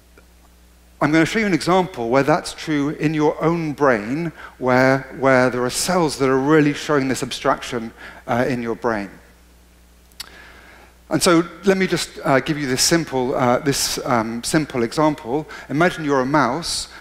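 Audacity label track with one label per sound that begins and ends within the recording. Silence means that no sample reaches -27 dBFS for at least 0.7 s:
1.010000	9.060000	sound
10.120000	10.270000	sound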